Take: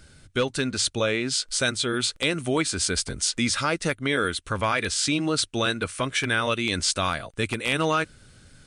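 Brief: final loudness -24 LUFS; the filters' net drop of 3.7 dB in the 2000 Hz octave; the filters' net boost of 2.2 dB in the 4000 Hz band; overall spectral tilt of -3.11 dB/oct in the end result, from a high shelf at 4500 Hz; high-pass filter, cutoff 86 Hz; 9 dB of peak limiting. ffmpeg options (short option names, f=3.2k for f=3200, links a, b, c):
-af "highpass=86,equalizer=f=2k:t=o:g=-6,equalizer=f=4k:t=o:g=6,highshelf=f=4.5k:g=-3.5,volume=5dB,alimiter=limit=-13.5dB:level=0:latency=1"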